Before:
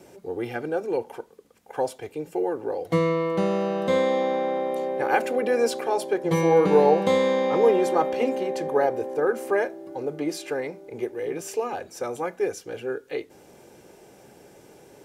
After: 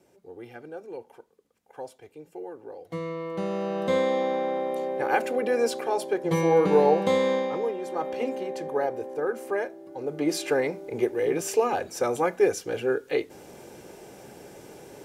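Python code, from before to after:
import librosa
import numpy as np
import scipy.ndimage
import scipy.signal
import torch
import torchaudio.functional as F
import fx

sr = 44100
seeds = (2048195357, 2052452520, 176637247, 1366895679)

y = fx.gain(x, sr, db=fx.line((2.89, -12.5), (3.83, -2.0), (7.35, -2.0), (7.77, -13.0), (8.12, -5.0), (9.93, -5.0), (10.37, 4.5)))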